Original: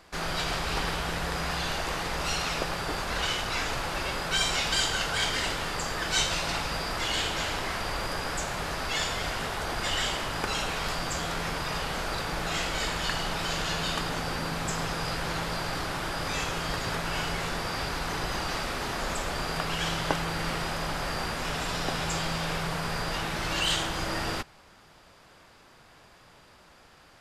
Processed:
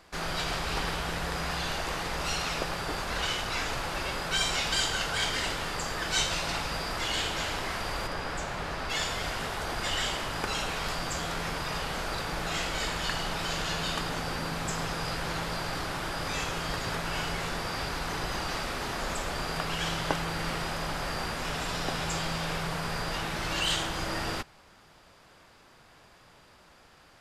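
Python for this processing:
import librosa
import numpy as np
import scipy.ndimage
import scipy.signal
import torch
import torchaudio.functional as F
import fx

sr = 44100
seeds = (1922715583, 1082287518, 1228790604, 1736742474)

y = fx.high_shelf(x, sr, hz=6200.0, db=-10.5, at=(8.07, 8.9))
y = F.gain(torch.from_numpy(y), -1.5).numpy()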